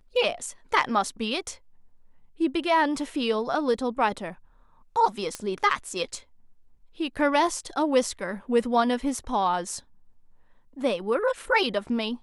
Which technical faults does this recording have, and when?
0:05.35: click −16 dBFS

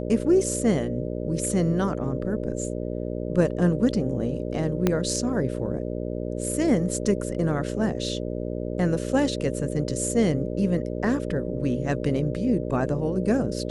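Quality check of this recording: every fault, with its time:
mains buzz 60 Hz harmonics 10 −30 dBFS
0:04.87: click −8 dBFS

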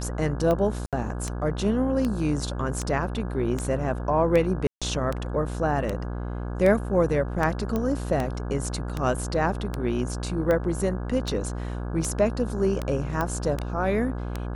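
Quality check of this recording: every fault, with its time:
mains buzz 60 Hz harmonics 28 −31 dBFS
scratch tick 78 rpm −14 dBFS
0:00.86–0:00.93: drop-out 67 ms
0:04.67–0:04.82: drop-out 146 ms
0:07.76: click −15 dBFS
0:13.21: click −14 dBFS

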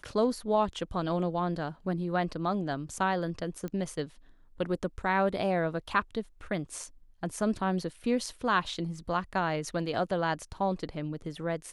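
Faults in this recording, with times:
0:03.68: click −25 dBFS

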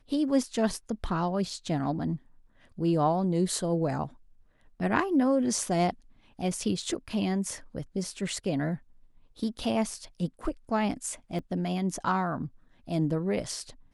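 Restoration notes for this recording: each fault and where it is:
0:11.39: drop-out 2.3 ms

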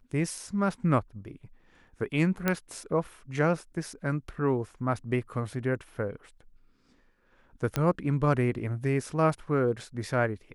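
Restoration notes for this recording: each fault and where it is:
0:02.48: click −11 dBFS
0:07.76: click −13 dBFS

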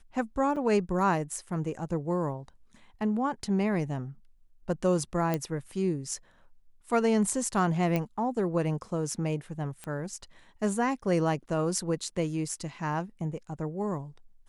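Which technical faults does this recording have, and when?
0:00.56–0:00.57: drop-out 5.3 ms
0:05.34: click −15 dBFS
0:07.96: click −16 dBFS
0:09.84: click −24 dBFS

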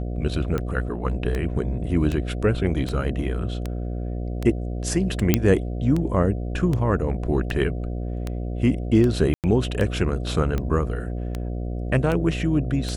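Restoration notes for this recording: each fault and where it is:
mains buzz 60 Hz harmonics 12 −28 dBFS
scratch tick 78 rpm −14 dBFS
0:05.34: click −2 dBFS
0:09.34–0:09.44: drop-out 98 ms

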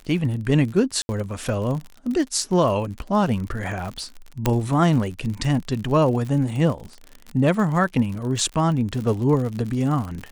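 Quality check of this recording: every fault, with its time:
surface crackle 64 per second −29 dBFS
0:01.02–0:01.09: drop-out 70 ms
0:04.46: click −5 dBFS

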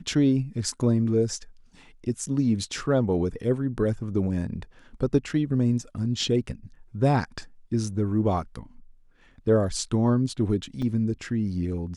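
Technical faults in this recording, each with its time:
0:10.82: drop-out 4.4 ms

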